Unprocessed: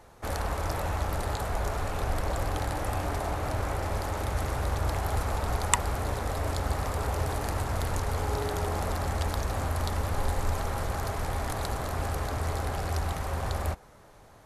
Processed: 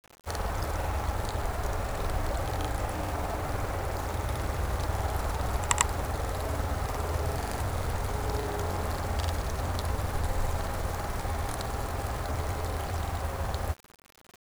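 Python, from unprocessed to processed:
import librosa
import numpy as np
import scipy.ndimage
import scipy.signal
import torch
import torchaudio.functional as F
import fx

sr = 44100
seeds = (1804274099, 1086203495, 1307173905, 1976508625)

y = fx.granulator(x, sr, seeds[0], grain_ms=100.0, per_s=20.0, spray_ms=100.0, spread_st=0)
y = fx.quant_dither(y, sr, seeds[1], bits=8, dither='none')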